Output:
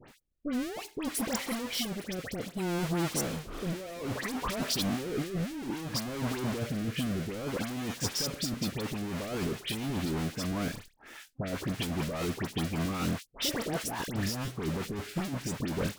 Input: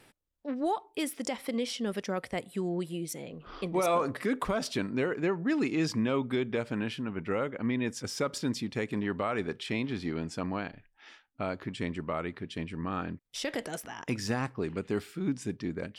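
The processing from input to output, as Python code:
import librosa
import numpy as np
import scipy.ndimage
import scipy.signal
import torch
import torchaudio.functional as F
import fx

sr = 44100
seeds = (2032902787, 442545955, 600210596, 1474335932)

y = fx.halfwave_hold(x, sr)
y = fx.over_compress(y, sr, threshold_db=-32.0, ratio=-1.0)
y = fx.leveller(y, sr, passes=1)
y = fx.rotary_switch(y, sr, hz=0.6, then_hz=5.0, switch_at_s=8.39)
y = fx.dispersion(y, sr, late='highs', ms=84.0, hz=1900.0)
y = y * librosa.db_to_amplitude(-2.5)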